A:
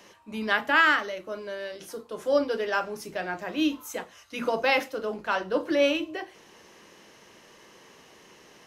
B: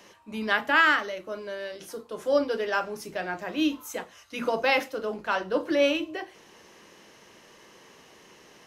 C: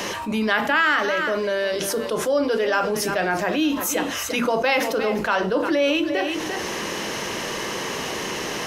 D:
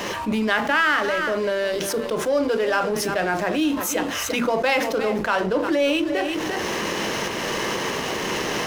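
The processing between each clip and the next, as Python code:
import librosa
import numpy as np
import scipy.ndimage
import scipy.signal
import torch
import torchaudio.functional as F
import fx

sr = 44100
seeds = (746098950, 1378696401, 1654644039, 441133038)

y1 = x
y2 = y1 + 10.0 ** (-16.5 / 20.0) * np.pad(y1, (int(348 * sr / 1000.0), 0))[:len(y1)]
y2 = fx.env_flatten(y2, sr, amount_pct=70)
y3 = fx.recorder_agc(y2, sr, target_db=-15.0, rise_db_per_s=13.0, max_gain_db=30)
y3 = fx.backlash(y3, sr, play_db=-29.5)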